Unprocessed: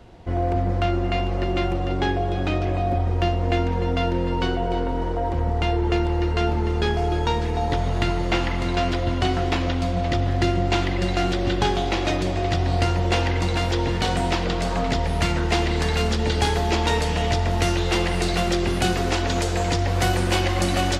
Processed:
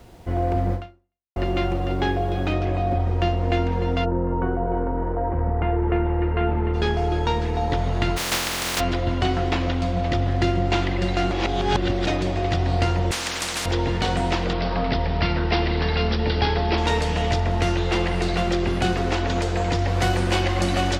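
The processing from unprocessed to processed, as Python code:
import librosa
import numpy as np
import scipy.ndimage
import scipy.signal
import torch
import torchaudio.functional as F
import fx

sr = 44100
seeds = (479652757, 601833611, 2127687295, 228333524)

y = fx.noise_floor_step(x, sr, seeds[0], at_s=2.53, before_db=-57, after_db=-68, tilt_db=0.0)
y = fx.lowpass(y, sr, hz=fx.line((4.04, 1300.0), (6.73, 2700.0)), slope=24, at=(4.04, 6.73), fade=0.02)
y = fx.spec_flatten(y, sr, power=0.14, at=(8.16, 8.79), fade=0.02)
y = fx.spectral_comp(y, sr, ratio=10.0, at=(13.11, 13.66))
y = fx.resample_bad(y, sr, factor=4, down='none', up='filtered', at=(14.53, 16.78))
y = fx.high_shelf(y, sr, hz=4500.0, db=-5.0, at=(17.4, 19.76))
y = fx.edit(y, sr, fx.fade_out_span(start_s=0.74, length_s=0.62, curve='exp'),
    fx.reverse_span(start_s=11.31, length_s=0.76), tone=tone)
y = fx.high_shelf(y, sr, hz=9600.0, db=-11.5)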